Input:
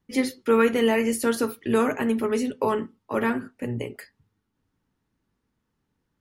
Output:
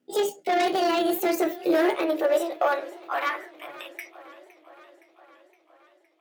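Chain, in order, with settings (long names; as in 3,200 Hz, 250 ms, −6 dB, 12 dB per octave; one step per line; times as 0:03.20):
pitch glide at a constant tempo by +8.5 semitones ending unshifted
in parallel at −11 dB: sine wavefolder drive 11 dB, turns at −9 dBFS
on the sum: high-pass filter sweep 230 Hz → 3,200 Hz, 0:01.14–0:04.90
feedback echo with a swinging delay time 515 ms, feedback 64%, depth 138 cents, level −19 dB
level −7.5 dB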